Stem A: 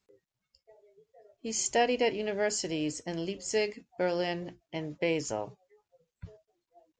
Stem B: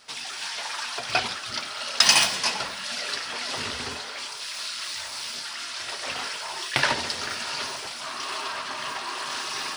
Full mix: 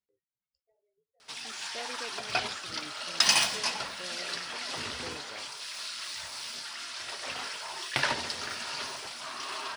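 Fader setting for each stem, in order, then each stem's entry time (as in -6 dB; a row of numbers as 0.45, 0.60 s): -17.5, -5.5 dB; 0.00, 1.20 s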